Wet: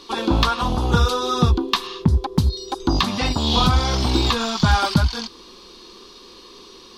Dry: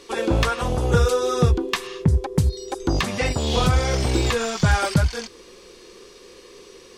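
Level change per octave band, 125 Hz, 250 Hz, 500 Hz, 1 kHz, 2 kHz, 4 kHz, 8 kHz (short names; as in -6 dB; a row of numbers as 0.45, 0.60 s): +0.5, +3.0, -3.5, +4.5, -0.5, +6.5, -1.5 dB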